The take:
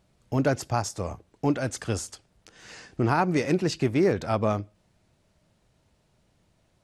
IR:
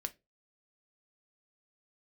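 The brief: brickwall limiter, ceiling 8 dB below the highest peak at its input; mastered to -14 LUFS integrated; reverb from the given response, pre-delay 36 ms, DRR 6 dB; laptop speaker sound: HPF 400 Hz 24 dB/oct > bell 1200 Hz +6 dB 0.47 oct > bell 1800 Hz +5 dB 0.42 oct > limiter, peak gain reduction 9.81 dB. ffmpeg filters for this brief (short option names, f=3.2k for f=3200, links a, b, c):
-filter_complex "[0:a]alimiter=limit=-17.5dB:level=0:latency=1,asplit=2[a][b];[1:a]atrim=start_sample=2205,adelay=36[c];[b][c]afir=irnorm=-1:irlink=0,volume=-5dB[d];[a][d]amix=inputs=2:normalize=0,highpass=f=400:w=0.5412,highpass=f=400:w=1.3066,equalizer=f=1.2k:t=o:w=0.47:g=6,equalizer=f=1.8k:t=o:w=0.42:g=5,volume=20.5dB,alimiter=limit=-3dB:level=0:latency=1"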